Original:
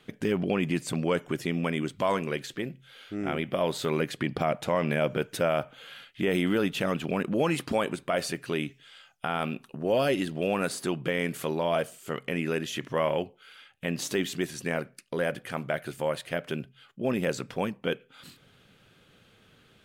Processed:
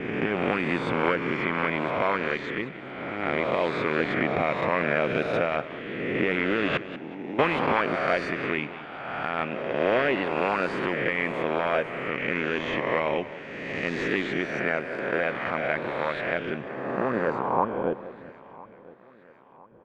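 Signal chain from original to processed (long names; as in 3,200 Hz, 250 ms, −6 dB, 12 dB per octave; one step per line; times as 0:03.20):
peak hold with a rise ahead of every peak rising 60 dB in 1.74 s
high-pass filter 72 Hz
noise gate with hold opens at −45 dBFS
0:06.77–0:07.39: formant resonators in series u
in parallel at −10 dB: sample-rate reduction 3,100 Hz, jitter 0%
on the sum: harmonic and percussive parts rebalanced harmonic −9 dB
low-pass filter sweep 2,200 Hz → 470 Hz, 0:16.36–0:18.95
on a send: repeating echo 1,008 ms, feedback 48%, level −21.5 dB
on the sum: feedback echo with a swinging delay time 187 ms, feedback 35%, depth 89 cents, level −14.5 dB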